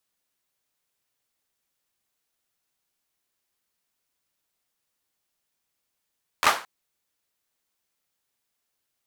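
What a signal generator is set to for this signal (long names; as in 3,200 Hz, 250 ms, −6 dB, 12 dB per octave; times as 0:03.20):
synth clap length 0.22 s, apart 12 ms, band 1,100 Hz, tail 0.34 s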